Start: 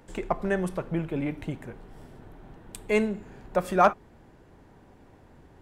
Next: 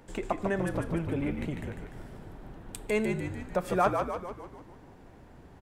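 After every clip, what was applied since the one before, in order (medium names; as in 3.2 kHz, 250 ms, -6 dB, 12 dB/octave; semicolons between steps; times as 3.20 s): compression 1.5:1, threshold -32 dBFS, peak gain reduction 6.5 dB; on a send: frequency-shifting echo 148 ms, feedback 55%, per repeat -62 Hz, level -5 dB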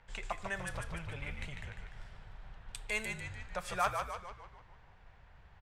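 amplifier tone stack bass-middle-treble 10-0-10; level-controlled noise filter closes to 2.5 kHz, open at -36.5 dBFS; trim +4 dB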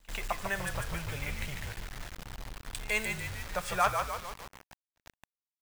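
bit crusher 8-bit; pre-echo 100 ms -24 dB; trim +5 dB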